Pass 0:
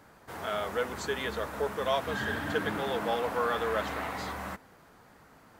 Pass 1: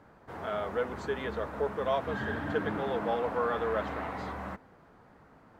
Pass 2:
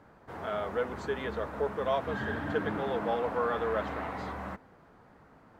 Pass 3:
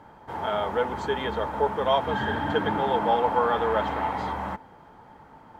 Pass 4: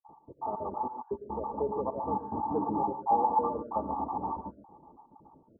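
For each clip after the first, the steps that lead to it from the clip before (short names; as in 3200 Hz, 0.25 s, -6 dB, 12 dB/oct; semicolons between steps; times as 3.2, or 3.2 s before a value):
LPF 1200 Hz 6 dB/oct; gain +1 dB
nothing audible
small resonant body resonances 880/3200 Hz, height 14 dB, ringing for 45 ms; gain +5 dB
random spectral dropouts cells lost 52%; rippled Chebyshev low-pass 1200 Hz, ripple 9 dB; non-linear reverb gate 0.16 s rising, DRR 9.5 dB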